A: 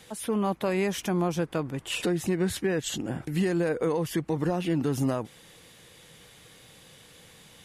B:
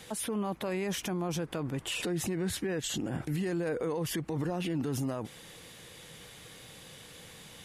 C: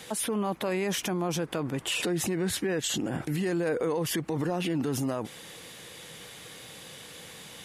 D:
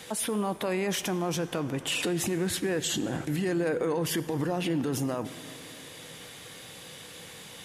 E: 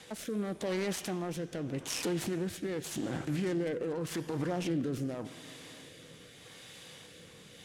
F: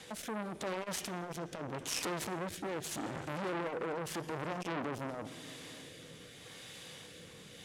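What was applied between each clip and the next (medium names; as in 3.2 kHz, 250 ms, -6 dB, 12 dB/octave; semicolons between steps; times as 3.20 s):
peak limiter -28 dBFS, peak gain reduction 10.5 dB; trim +2.5 dB
bass shelf 98 Hz -11.5 dB; trim +5 dB
reverberation RT60 3.3 s, pre-delay 5 ms, DRR 12.5 dB
self-modulated delay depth 0.2 ms; low-pass 11 kHz 12 dB/octave; rotary cabinet horn 0.85 Hz; trim -3 dB
transformer saturation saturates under 1.7 kHz; trim +1 dB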